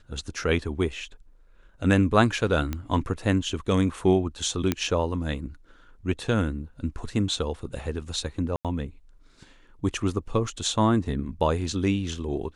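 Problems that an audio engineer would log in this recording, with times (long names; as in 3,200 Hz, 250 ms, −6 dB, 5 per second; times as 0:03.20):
0:02.73: click −16 dBFS
0:04.72: click −9 dBFS
0:08.56–0:08.65: drop-out 87 ms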